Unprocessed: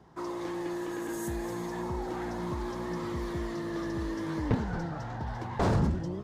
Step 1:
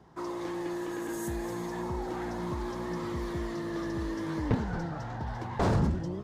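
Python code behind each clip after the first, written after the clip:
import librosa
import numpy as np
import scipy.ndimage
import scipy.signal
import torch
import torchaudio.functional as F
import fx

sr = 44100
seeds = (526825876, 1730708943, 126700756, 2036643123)

y = x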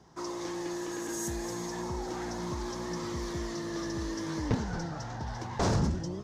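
y = fx.peak_eq(x, sr, hz=5900.0, db=13.0, octaves=0.94)
y = F.gain(torch.from_numpy(y), -1.5).numpy()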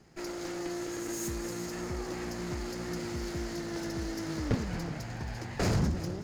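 y = fx.lower_of_two(x, sr, delay_ms=0.42)
y = y + 10.0 ** (-15.0 / 20.0) * np.pad(y, (int(370 * sr / 1000.0), 0))[:len(y)]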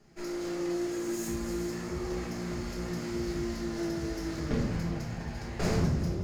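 y = fx.room_shoebox(x, sr, seeds[0], volume_m3=220.0, walls='mixed', distance_m=1.3)
y = F.gain(torch.from_numpy(y), -4.5).numpy()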